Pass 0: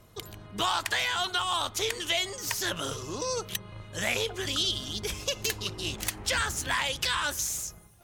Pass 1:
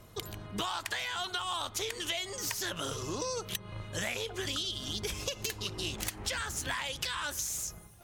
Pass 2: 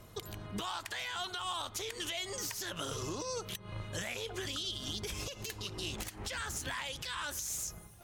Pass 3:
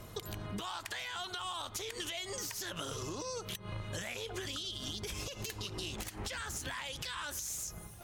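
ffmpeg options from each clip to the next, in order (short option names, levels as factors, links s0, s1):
-af "acompressor=threshold=0.02:ratio=6,volume=1.26"
-af "alimiter=level_in=1.5:limit=0.0631:level=0:latency=1:release=142,volume=0.668"
-af "acompressor=threshold=0.00794:ratio=6,volume=1.78"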